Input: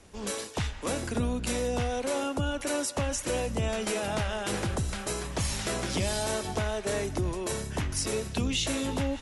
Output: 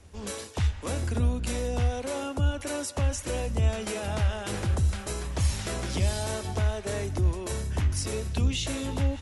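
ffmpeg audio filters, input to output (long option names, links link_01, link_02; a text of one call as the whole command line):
ffmpeg -i in.wav -af "equalizer=frequency=78:width=1.8:gain=14,volume=-2.5dB" out.wav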